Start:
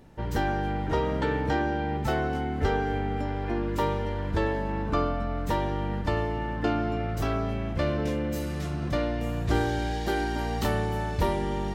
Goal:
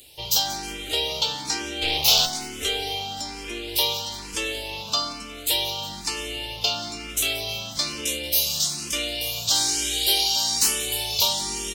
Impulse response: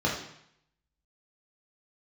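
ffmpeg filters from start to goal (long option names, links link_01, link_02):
-filter_complex "[0:a]asettb=1/sr,asplit=3[link_01][link_02][link_03];[link_01]atrim=end=4.804[link_04];[link_02]atrim=start=4.8:end=5.53,asetpts=PTS-STARTPTS,afade=type=in:duration=0.004:curve=qsin,afade=type=out:start_time=0.726:duration=0.004:curve=qsin,highpass=frequency=140:poles=1[link_05];[link_03]atrim=start=5.526[link_06];[link_04][link_05]acrossfade=duration=0.004:curve1=hsin:curve2=qsin[link_07];[link_07][link_06]acrossfade=duration=0.004:curve1=qsin:curve2=hsin,acrossover=split=400[link_08][link_09];[link_08]alimiter=level_in=2.5dB:limit=-24dB:level=0:latency=1,volume=-2.5dB[link_10];[link_09]acontrast=53[link_11];[link_10][link_11]amix=inputs=2:normalize=0,asplit=3[link_12][link_13][link_14];[link_12]afade=type=out:start_time=1.81:duration=0.02[link_15];[link_13]aeval=exprs='0.251*(cos(1*acos(clip(val(0)/0.251,-1,1)))-cos(1*PI/2))+0.0447*(cos(5*acos(clip(val(0)/0.251,-1,1)))-cos(5*PI/2))+0.0562*(cos(8*acos(clip(val(0)/0.251,-1,1)))-cos(8*PI/2))':channel_layout=same,afade=type=in:start_time=1.81:duration=0.02,afade=type=out:start_time=2.25:duration=0.02[link_16];[link_14]afade=type=in:start_time=2.25:duration=0.02[link_17];[link_15][link_16][link_17]amix=inputs=3:normalize=0,aexciter=amount=11.2:drive=8.9:freq=2700,asoftclip=type=hard:threshold=-3.5dB,asplit=2[link_18][link_19];[link_19]aecho=0:1:181|362|543|724|905:0.141|0.0763|0.0412|0.0222|0.012[link_20];[link_18][link_20]amix=inputs=2:normalize=0,asplit=2[link_21][link_22];[link_22]afreqshift=1.1[link_23];[link_21][link_23]amix=inputs=2:normalize=1,volume=-6.5dB"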